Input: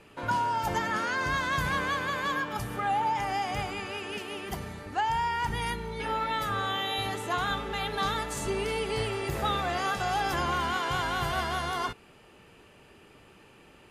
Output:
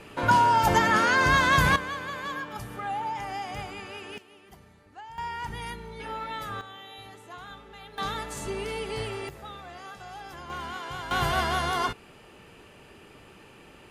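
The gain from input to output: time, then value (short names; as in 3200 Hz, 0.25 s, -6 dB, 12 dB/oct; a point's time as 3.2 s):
+8 dB
from 1.76 s -4 dB
from 4.18 s -16 dB
from 5.18 s -5 dB
from 6.61 s -14 dB
from 7.98 s -2.5 dB
from 9.29 s -13.5 dB
from 10.5 s -7 dB
from 11.11 s +4 dB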